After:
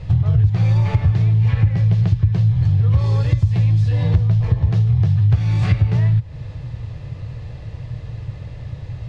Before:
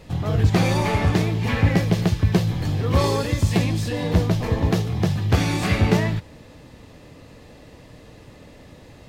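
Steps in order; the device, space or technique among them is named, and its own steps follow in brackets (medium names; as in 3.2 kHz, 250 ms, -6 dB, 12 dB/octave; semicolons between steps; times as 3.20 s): jukebox (low-pass 5 kHz 12 dB/octave; resonant low shelf 170 Hz +11.5 dB, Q 3; compression 5:1, threshold -17 dBFS, peak gain reduction 19.5 dB); trim +3 dB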